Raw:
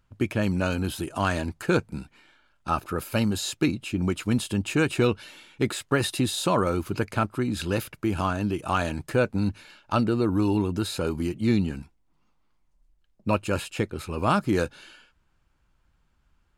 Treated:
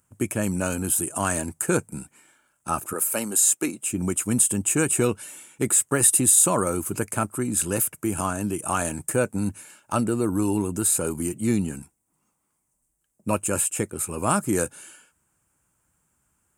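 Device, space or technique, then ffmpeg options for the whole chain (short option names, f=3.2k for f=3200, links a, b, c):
budget condenser microphone: -filter_complex "[0:a]asettb=1/sr,asplit=3[a][b][c];[a]atrim=end=2.934[d];[b]atrim=start=2.93:end=3.86,asetpts=PTS-STARTPTS,afade=t=in:d=0.004:c=qsin,afade=t=out:st=0.926:d=0.004:c=qsin,highpass=310[e];[c]atrim=start=3.856[f];[d][e]acrossfade=d=0.004:c1=hsin:c2=qsin[g];[g][f]acrossfade=d=0.004:c1=qsin:c2=hsin,highpass=100,highshelf=f=6k:t=q:w=3:g=13.5"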